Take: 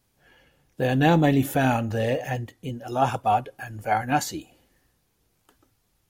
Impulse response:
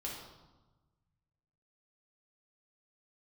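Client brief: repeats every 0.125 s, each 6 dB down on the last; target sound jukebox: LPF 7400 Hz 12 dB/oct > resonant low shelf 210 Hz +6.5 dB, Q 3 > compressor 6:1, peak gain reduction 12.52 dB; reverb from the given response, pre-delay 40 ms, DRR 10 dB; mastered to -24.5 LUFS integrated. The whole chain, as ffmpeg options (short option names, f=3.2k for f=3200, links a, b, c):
-filter_complex "[0:a]aecho=1:1:125|250|375|500|625|750:0.501|0.251|0.125|0.0626|0.0313|0.0157,asplit=2[a][b];[1:a]atrim=start_sample=2205,adelay=40[c];[b][c]afir=irnorm=-1:irlink=0,volume=-10.5dB[d];[a][d]amix=inputs=2:normalize=0,lowpass=7.4k,lowshelf=f=210:t=q:w=3:g=6.5,acompressor=threshold=-20dB:ratio=6,volume=0.5dB"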